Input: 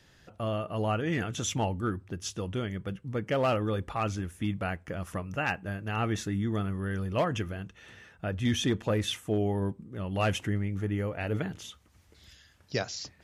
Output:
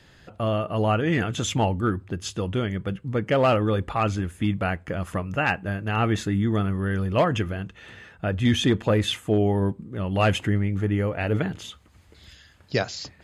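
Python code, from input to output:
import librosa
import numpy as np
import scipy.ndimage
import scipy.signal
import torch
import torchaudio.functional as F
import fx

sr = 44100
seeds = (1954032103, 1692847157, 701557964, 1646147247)

y = fx.high_shelf(x, sr, hz=9200.0, db=-8.5)
y = fx.notch(y, sr, hz=5700.0, q=7.3)
y = F.gain(torch.from_numpy(y), 7.0).numpy()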